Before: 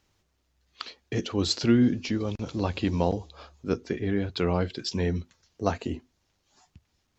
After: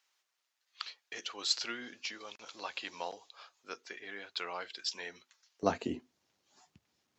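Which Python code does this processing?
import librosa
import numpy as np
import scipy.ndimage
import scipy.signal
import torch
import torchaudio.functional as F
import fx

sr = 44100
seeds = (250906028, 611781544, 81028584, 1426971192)

y = fx.highpass(x, sr, hz=fx.steps((0.0, 1100.0), (5.63, 180.0)), slope=12)
y = y * librosa.db_to_amplitude(-3.0)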